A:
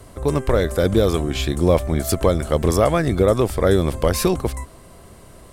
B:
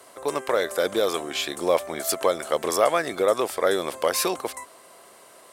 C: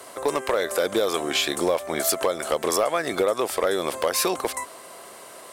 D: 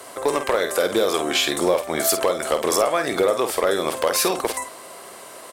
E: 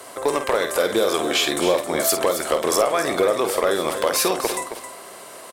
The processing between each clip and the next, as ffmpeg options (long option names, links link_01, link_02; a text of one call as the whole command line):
ffmpeg -i in.wav -af "highpass=560" out.wav
ffmpeg -i in.wav -af "acompressor=threshold=-26dB:ratio=5,asoftclip=type=hard:threshold=-20.5dB,volume=7dB" out.wav
ffmpeg -i in.wav -filter_complex "[0:a]asplit=2[link_01][link_02];[link_02]adelay=50,volume=-8.5dB[link_03];[link_01][link_03]amix=inputs=2:normalize=0,volume=2.5dB" out.wav
ffmpeg -i in.wav -af "aecho=1:1:269:0.316" out.wav